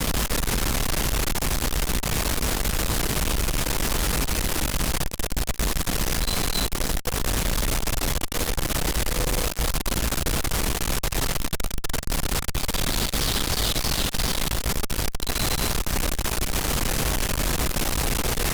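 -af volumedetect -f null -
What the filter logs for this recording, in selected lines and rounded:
mean_volume: -23.5 dB
max_volume: -14.4 dB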